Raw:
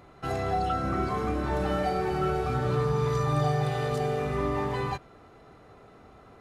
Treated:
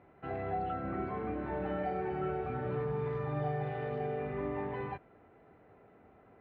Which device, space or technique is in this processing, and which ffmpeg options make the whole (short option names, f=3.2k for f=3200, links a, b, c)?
bass cabinet: -af "highpass=60,equalizer=f=64:t=q:w=4:g=-6,equalizer=f=130:t=q:w=4:g=-5,equalizer=f=1.2k:t=q:w=4:g=-8,lowpass=f=2.4k:w=0.5412,lowpass=f=2.4k:w=1.3066,volume=-6.5dB"